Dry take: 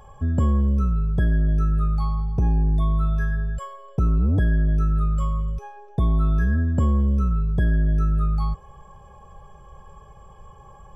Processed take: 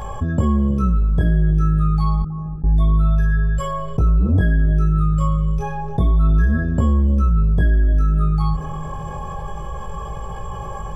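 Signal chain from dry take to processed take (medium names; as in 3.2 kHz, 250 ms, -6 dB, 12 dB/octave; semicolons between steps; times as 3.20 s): 2.22–2.64 s: gate -14 dBFS, range -37 dB; chorus 0.29 Hz, delay 17.5 ms, depth 7.8 ms; bucket-brigade echo 318 ms, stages 2048, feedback 49%, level -20 dB; level flattener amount 50%; trim +5 dB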